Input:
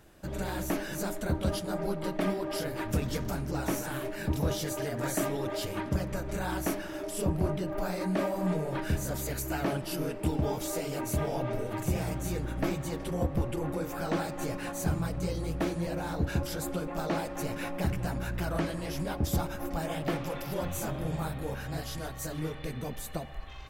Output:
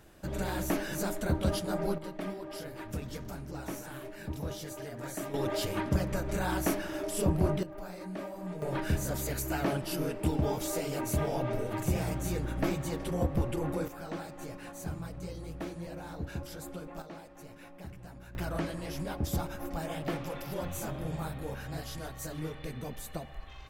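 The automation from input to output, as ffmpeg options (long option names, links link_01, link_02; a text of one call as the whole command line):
ffmpeg -i in.wav -af "asetnsamples=nb_out_samples=441:pad=0,asendcmd='1.98 volume volume -8dB;5.34 volume volume 1.5dB;7.63 volume volume -10dB;8.62 volume volume 0dB;13.88 volume volume -8.5dB;17.02 volume volume -15.5dB;18.35 volume volume -3dB',volume=0.5dB" out.wav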